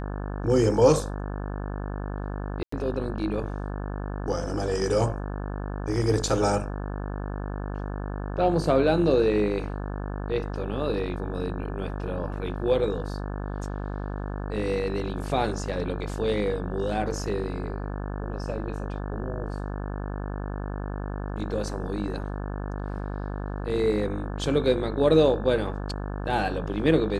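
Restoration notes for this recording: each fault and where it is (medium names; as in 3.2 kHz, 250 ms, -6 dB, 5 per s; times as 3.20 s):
buzz 50 Hz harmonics 35 -32 dBFS
2.63–2.72 s: dropout 94 ms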